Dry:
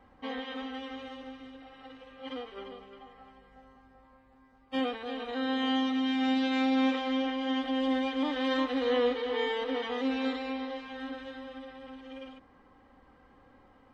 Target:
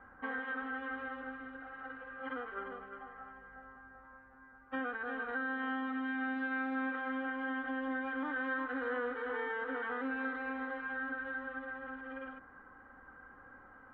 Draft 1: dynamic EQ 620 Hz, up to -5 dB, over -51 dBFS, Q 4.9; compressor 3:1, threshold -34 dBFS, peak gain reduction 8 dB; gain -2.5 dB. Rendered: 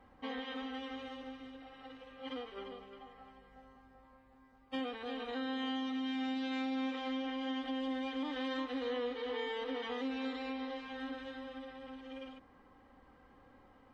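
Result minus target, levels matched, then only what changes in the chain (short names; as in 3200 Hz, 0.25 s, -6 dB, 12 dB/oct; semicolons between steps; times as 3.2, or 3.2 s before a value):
2000 Hz band -8.5 dB
add after dynamic EQ: synth low-pass 1500 Hz, resonance Q 11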